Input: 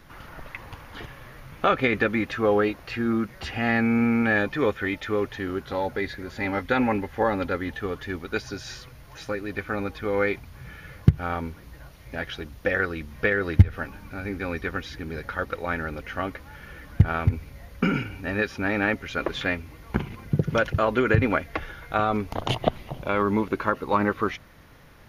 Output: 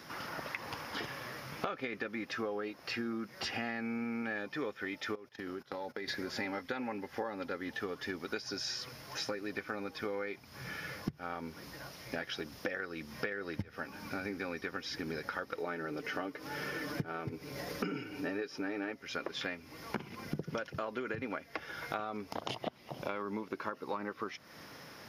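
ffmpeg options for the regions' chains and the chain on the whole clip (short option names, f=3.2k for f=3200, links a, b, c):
-filter_complex "[0:a]asettb=1/sr,asplit=3[a][b][c];[a]atrim=end=5.154[d];[b]atrim=start=5.15:end=6.08,asetpts=PTS-STARTPTS,afade=t=in:d=0.004:c=qsin,afade=t=out:st=0.926:d=0.004:c=qsin,agate=range=-22dB:threshold=-36dB:ratio=16:release=100:detection=peak,acompressor=threshold=-38dB:ratio=10:attack=3.2:release=140:knee=1:detection=peak[e];[c]atrim=start=6.076[f];[d][e]acrossfade=d=0.004:c1=hsin:c2=qsin[g];[g][f]acrossfade=d=0.004:c1=qsin:c2=hsin,asettb=1/sr,asplit=3[h][i][j];[h]atrim=end=15.584[k];[i]atrim=start=15.58:end=18.92,asetpts=PTS-STARTPTS,afade=t=in:d=0.004:c=qsin,afade=t=out:st=3.336:d=0.004:c=qsin,equalizer=f=380:w=1.7:g=8.5,aecho=1:1:6.7:0.51,atrim=end_sample=147294,acompressor=mode=upward:threshold=-31dB:ratio=2.5:attack=3.2:release=140:knee=2.83:detection=peak[l];[j]atrim=start=18.916[m];[k][l]acrossfade=d=0.004:c1=hsin:c2=qsin[n];[n][m]acrossfade=d=0.004:c1=qsin:c2=hsin,highpass=190,equalizer=f=5.2k:t=o:w=0.26:g=13,acompressor=threshold=-37dB:ratio=12,volume=2.5dB"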